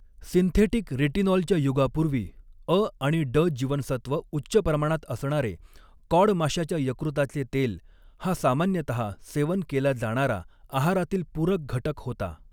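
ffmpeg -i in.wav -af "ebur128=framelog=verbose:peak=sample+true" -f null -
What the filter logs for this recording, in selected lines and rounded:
Integrated loudness:
  I:         -26.2 LUFS
  Threshold: -36.5 LUFS
Loudness range:
  LRA:         2.5 LU
  Threshold: -46.6 LUFS
  LRA low:   -27.6 LUFS
  LRA high:  -25.2 LUFS
Sample peak:
  Peak:       -8.3 dBFS
True peak:
  Peak:       -8.3 dBFS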